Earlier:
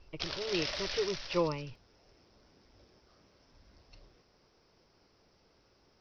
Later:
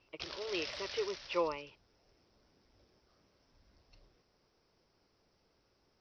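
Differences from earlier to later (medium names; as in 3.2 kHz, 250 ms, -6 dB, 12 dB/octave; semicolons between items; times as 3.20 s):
speech: add high-pass 450 Hz 12 dB/octave; background -6.5 dB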